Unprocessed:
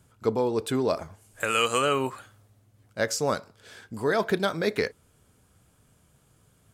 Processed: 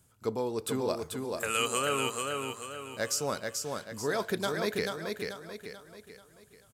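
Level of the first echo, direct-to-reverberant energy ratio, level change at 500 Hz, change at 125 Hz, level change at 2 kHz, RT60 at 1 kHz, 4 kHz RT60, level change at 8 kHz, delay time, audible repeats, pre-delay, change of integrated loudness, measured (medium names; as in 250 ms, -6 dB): -4.0 dB, no reverb, -5.0 dB, -5.0 dB, -4.0 dB, no reverb, no reverb, +1.5 dB, 437 ms, 5, no reverb, -5.5 dB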